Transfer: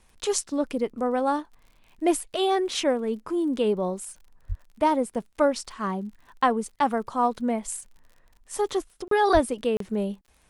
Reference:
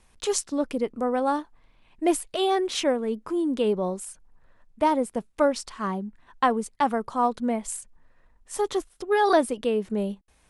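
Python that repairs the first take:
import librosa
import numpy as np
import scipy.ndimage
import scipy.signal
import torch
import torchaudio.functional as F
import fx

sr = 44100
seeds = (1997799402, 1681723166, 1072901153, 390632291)

y = fx.fix_declick_ar(x, sr, threshold=6.5)
y = fx.highpass(y, sr, hz=140.0, slope=24, at=(4.48, 4.6), fade=0.02)
y = fx.highpass(y, sr, hz=140.0, slope=24, at=(9.33, 9.45), fade=0.02)
y = fx.fix_interpolate(y, sr, at_s=(9.08, 9.77), length_ms=33.0)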